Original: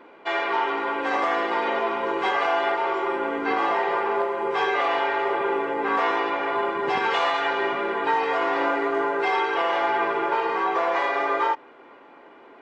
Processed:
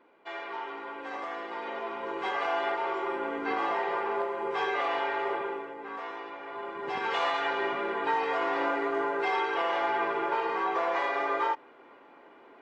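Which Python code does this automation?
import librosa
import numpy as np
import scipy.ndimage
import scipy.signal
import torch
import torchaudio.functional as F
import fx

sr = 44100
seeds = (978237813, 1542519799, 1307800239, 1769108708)

y = fx.gain(x, sr, db=fx.line((1.45, -13.5), (2.56, -6.5), (5.33, -6.5), (5.77, -16.0), (6.43, -16.0), (7.23, -5.5)))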